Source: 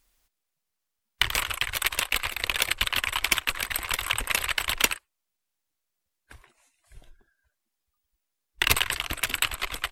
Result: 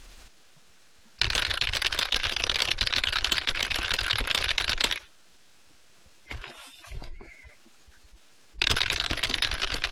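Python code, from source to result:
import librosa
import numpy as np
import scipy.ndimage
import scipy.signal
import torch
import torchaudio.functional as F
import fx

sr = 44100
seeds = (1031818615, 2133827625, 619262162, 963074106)

y = scipy.signal.sosfilt(scipy.signal.butter(2, 4700.0, 'lowpass', fs=sr, output='sos'), x)
y = fx.formant_shift(y, sr, semitones=5)
y = fx.env_flatten(y, sr, amount_pct=50)
y = F.gain(torch.from_numpy(y), -2.5).numpy()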